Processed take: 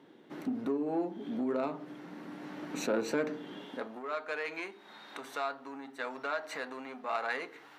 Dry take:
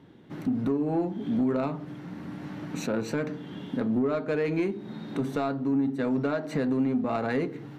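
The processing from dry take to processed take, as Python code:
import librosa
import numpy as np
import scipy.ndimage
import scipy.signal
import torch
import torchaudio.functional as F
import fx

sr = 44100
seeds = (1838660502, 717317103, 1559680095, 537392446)

y = fx.filter_sweep_highpass(x, sr, from_hz=330.0, to_hz=960.0, start_s=3.51, end_s=4.02, q=0.89)
y = fx.rider(y, sr, range_db=5, speed_s=2.0)
y = F.gain(torch.from_numpy(y), -3.0).numpy()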